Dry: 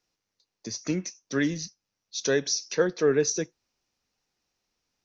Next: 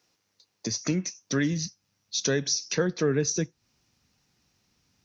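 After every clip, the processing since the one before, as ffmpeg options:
-af "asubboost=boost=5:cutoff=210,acompressor=threshold=0.0112:ratio=2,highpass=86,volume=2.82"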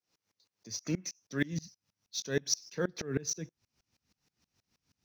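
-filter_complex "[0:a]acrossover=split=1800[s0][s1];[s1]acrusher=bits=5:mode=log:mix=0:aa=0.000001[s2];[s0][s2]amix=inputs=2:normalize=0,aeval=exprs='val(0)*pow(10,-27*if(lt(mod(-6.3*n/s,1),2*abs(-6.3)/1000),1-mod(-6.3*n/s,1)/(2*abs(-6.3)/1000),(mod(-6.3*n/s,1)-2*abs(-6.3)/1000)/(1-2*abs(-6.3)/1000))/20)':c=same"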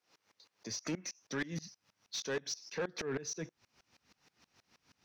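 -filter_complex "[0:a]acompressor=threshold=0.00631:ratio=2,asplit=2[s0][s1];[s1]highpass=f=720:p=1,volume=5.62,asoftclip=type=tanh:threshold=0.0473[s2];[s0][s2]amix=inputs=2:normalize=0,lowpass=f=2100:p=1,volume=0.501,asoftclip=type=tanh:threshold=0.0188,volume=1.78"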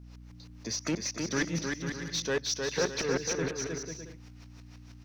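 -filter_complex "[0:a]aeval=exprs='val(0)+0.002*(sin(2*PI*60*n/s)+sin(2*PI*2*60*n/s)/2+sin(2*PI*3*60*n/s)/3+sin(2*PI*4*60*n/s)/4+sin(2*PI*5*60*n/s)/5)':c=same,asplit=2[s0][s1];[s1]aecho=0:1:310|496|607.6|674.6|714.7:0.631|0.398|0.251|0.158|0.1[s2];[s0][s2]amix=inputs=2:normalize=0,volume=2.11"

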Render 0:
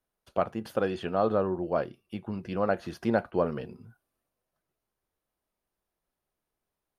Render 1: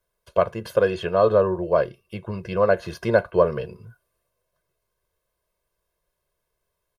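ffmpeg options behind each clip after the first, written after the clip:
-af "aecho=1:1:1.9:0.83,volume=1.78"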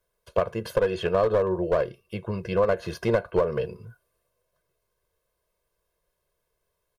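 -af "equalizer=f=470:w=4.6:g=4,acompressor=threshold=0.141:ratio=10,aeval=exprs='clip(val(0),-1,0.112)':c=same"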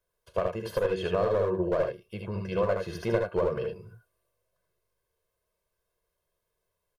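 -af "aecho=1:1:38|69|80:0.178|0.447|0.562,volume=0.531"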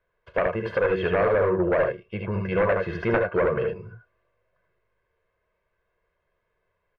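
-af "aeval=exprs='0.299*sin(PI/2*2.82*val(0)/0.299)':c=same,lowpass=f=2000:t=q:w=1.9,volume=0.473"

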